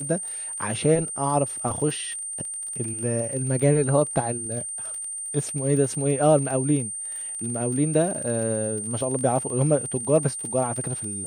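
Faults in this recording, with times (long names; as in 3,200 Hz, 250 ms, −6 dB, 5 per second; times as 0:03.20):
surface crackle 29 per second −31 dBFS
whistle 8,800 Hz −30 dBFS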